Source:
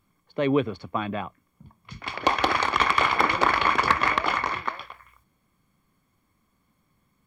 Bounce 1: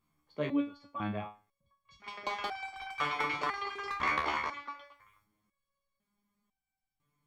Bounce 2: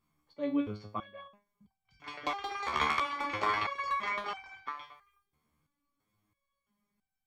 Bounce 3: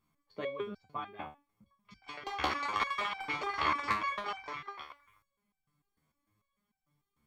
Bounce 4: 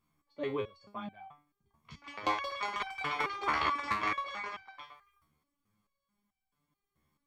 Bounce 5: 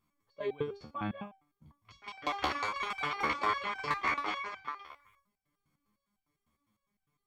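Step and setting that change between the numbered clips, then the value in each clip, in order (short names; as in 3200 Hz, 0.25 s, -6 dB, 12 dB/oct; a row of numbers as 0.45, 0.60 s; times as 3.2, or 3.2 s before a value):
stepped resonator, rate: 2, 3, 6.7, 4.6, 9.9 Hz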